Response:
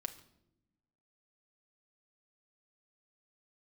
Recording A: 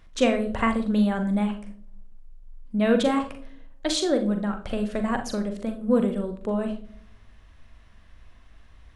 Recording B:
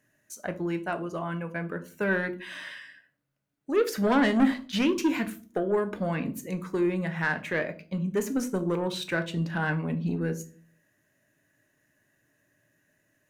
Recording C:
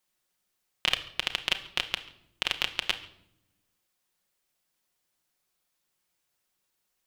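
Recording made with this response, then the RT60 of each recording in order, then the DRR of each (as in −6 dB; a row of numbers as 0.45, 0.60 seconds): C; 0.55 s, 0.40 s, non-exponential decay; 6.0, 7.5, 5.0 decibels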